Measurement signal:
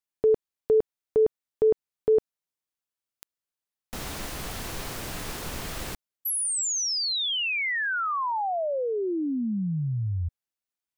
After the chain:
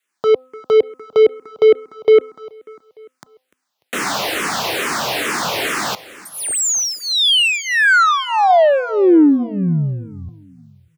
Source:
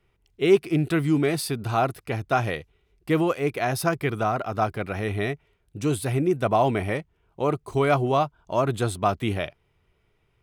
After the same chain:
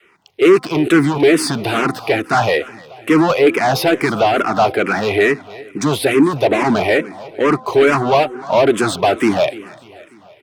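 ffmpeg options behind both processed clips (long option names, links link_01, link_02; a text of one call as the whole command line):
ffmpeg -i in.wav -filter_complex "[0:a]asplit=2[link_01][link_02];[link_02]highpass=frequency=720:poles=1,volume=27dB,asoftclip=type=tanh:threshold=-7dB[link_03];[link_01][link_03]amix=inputs=2:normalize=0,lowpass=frequency=2900:poles=1,volume=-6dB,highpass=130,bandreject=frequency=257.9:width_type=h:width=4,bandreject=frequency=515.8:width_type=h:width=4,bandreject=frequency=773.7:width_type=h:width=4,bandreject=frequency=1031.6:width_type=h:width=4,bandreject=frequency=1289.5:width_type=h:width=4,adynamicequalizer=threshold=0.0398:dfrequency=290:dqfactor=1.1:tfrequency=290:tqfactor=1.1:attack=5:release=100:ratio=0.375:range=2.5:mode=boostabove:tftype=bell,asplit=2[link_04][link_05];[link_05]asoftclip=type=tanh:threshold=-15.5dB,volume=-7dB[link_06];[link_04][link_06]amix=inputs=2:normalize=0,aecho=1:1:296|592|888|1184:0.112|0.0572|0.0292|0.0149,asplit=2[link_07][link_08];[link_08]afreqshift=-2.3[link_09];[link_07][link_09]amix=inputs=2:normalize=1,volume=1.5dB" out.wav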